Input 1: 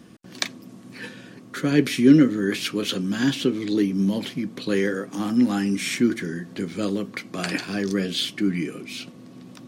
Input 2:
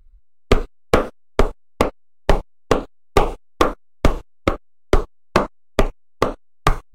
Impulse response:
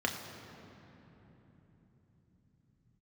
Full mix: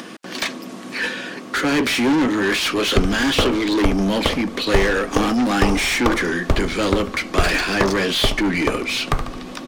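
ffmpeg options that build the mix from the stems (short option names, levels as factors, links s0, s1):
-filter_complex "[0:a]highpass=170,asplit=2[s0][s1];[s1]highpass=f=720:p=1,volume=39.8,asoftclip=type=tanh:threshold=0.631[s2];[s0][s2]amix=inputs=2:normalize=0,lowpass=f=3900:p=1,volume=0.501,volume=0.473[s3];[1:a]equalizer=f=82:t=o:w=0.77:g=8.5,adelay=2450,volume=0.562,asplit=2[s4][s5];[s5]volume=0.335,aecho=0:1:73|146|219|292|365|438|511|584:1|0.56|0.314|0.176|0.0983|0.0551|0.0308|0.0173[s6];[s3][s4][s6]amix=inputs=3:normalize=0,acompressor=mode=upward:threshold=0.0251:ratio=2.5"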